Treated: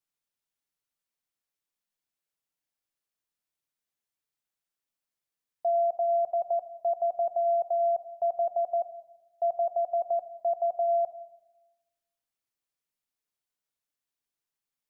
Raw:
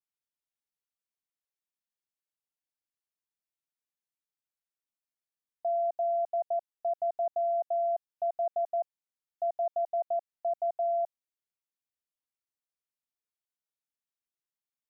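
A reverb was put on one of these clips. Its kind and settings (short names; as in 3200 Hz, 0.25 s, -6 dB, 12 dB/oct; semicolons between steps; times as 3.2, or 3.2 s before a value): shoebox room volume 420 m³, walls mixed, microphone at 0.36 m; gain +3.5 dB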